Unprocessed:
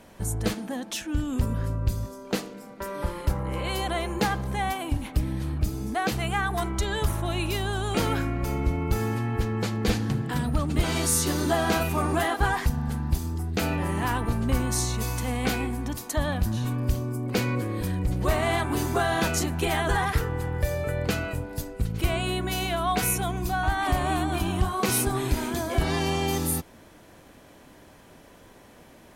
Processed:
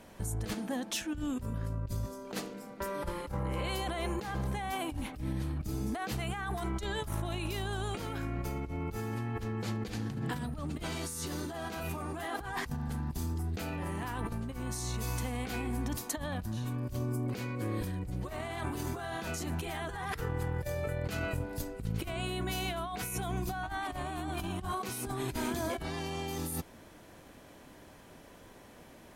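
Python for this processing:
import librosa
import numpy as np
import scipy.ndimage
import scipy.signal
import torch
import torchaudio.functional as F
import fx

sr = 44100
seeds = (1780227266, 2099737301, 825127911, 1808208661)

y = fx.over_compress(x, sr, threshold_db=-30.0, ratio=-1.0)
y = F.gain(torch.from_numpy(y), -6.0).numpy()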